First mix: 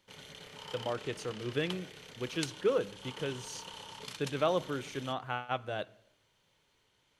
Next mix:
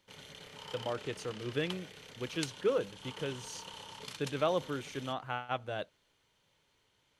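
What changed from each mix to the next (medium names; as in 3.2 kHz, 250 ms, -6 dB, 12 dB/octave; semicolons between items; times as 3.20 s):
reverb: off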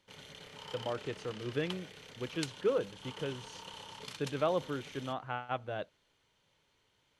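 speech: add treble shelf 4.5 kHz -12 dB; master: add treble shelf 9.1 kHz -4.5 dB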